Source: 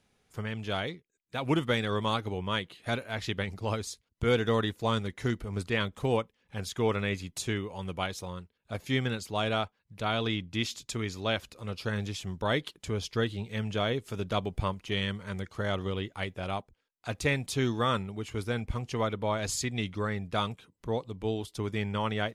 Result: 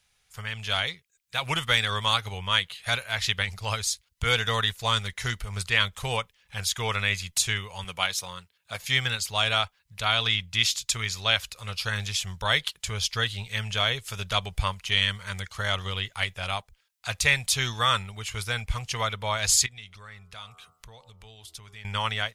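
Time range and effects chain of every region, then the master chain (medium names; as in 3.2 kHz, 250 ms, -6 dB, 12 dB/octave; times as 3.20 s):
7.84–8.81 s: high-pass 140 Hz + short-mantissa float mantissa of 8-bit
19.66–21.85 s: de-hum 81.59 Hz, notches 18 + compression 2.5:1, threshold -53 dBFS
whole clip: amplifier tone stack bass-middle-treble 10-0-10; level rider gain up to 5.5 dB; trim +8 dB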